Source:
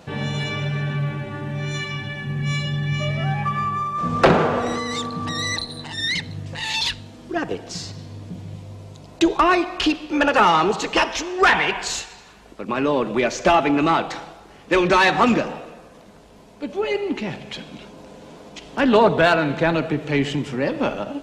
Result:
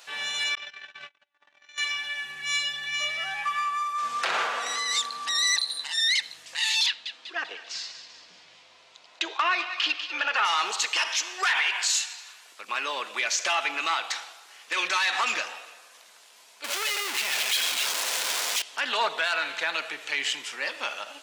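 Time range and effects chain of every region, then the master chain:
0.55–1.78 LPF 6400 Hz 24 dB/oct + doubler 17 ms -5.5 dB + gate -26 dBFS, range -43 dB
6.86–10.45 LPF 3500 Hz + thin delay 0.195 s, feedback 50%, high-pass 1900 Hz, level -11 dB
16.64–18.62 HPF 150 Hz 24 dB/oct + tone controls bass -3 dB, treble +1 dB + power-law curve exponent 0.35
whole clip: HPF 1400 Hz 12 dB/oct; high shelf 3300 Hz +8 dB; limiter -15 dBFS

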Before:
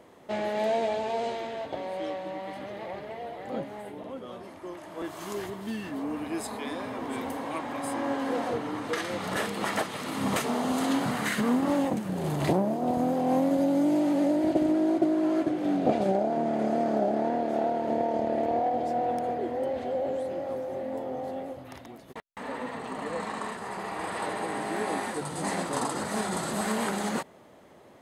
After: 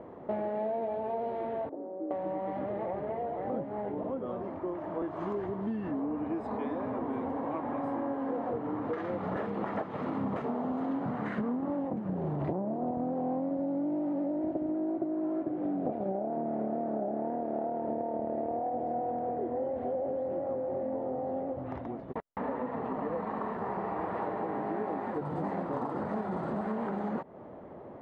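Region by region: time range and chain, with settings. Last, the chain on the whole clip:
1.69–2.11 delta modulation 16 kbps, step -32.5 dBFS + ladder band-pass 360 Hz, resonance 50% + air absorption 430 m
whole clip: LPF 1000 Hz 12 dB/oct; compressor, threshold -39 dBFS; gain +8 dB

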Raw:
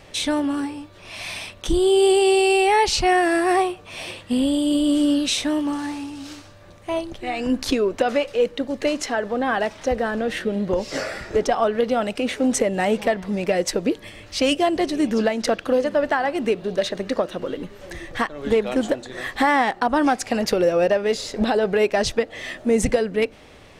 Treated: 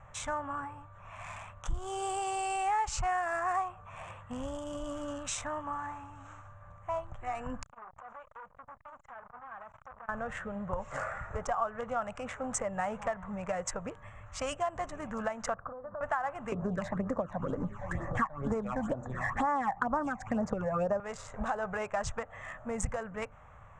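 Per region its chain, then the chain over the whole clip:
7.63–10.09 compressor 16:1, threshold -32 dBFS + core saturation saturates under 3100 Hz
15.54–16.01 LPF 1300 Hz 24 dB/oct + notch 900 Hz, Q 15 + compressor 10:1, threshold -26 dBFS
16.52–21 bell 270 Hz +14 dB 2 oct + phaser stages 8, 2.1 Hz, lowest notch 370–3400 Hz + three-band squash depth 70%
whole clip: Wiener smoothing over 9 samples; EQ curve 130 Hz 0 dB, 340 Hz -25 dB, 570 Hz -8 dB, 1200 Hz +5 dB, 1900 Hz -7 dB, 4200 Hz -19 dB, 7400 Hz +1 dB, 13000 Hz -28 dB; compressor 2.5:1, threshold -27 dBFS; gain -3 dB

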